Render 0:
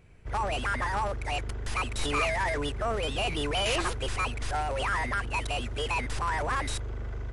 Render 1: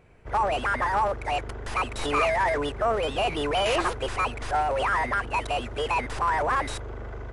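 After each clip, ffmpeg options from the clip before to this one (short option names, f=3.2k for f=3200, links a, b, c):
-af "equalizer=f=740:w=0.39:g=10,volume=-3dB"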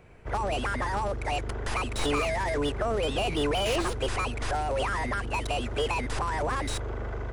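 -filter_complex "[0:a]acrossover=split=410|3200[a][b][c];[b]acompressor=threshold=-34dB:ratio=6[d];[c]asoftclip=type=hard:threshold=-36dB[e];[a][d][e]amix=inputs=3:normalize=0,volume=3dB"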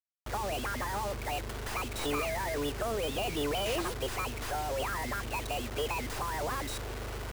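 -filter_complex "[0:a]acrossover=split=120|1600[a][b][c];[a]alimiter=level_in=8.5dB:limit=-24dB:level=0:latency=1:release=53,volume=-8.5dB[d];[d][b][c]amix=inputs=3:normalize=0,acrusher=bits=5:mix=0:aa=0.000001,volume=-5dB"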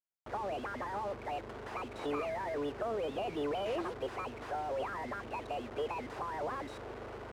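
-af "bandpass=f=530:t=q:w=0.51:csg=0,volume=-1.5dB"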